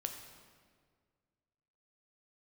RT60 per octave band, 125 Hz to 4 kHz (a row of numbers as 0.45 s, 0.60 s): 2.2 s, 2.1 s, 2.0 s, 1.7 s, 1.5 s, 1.3 s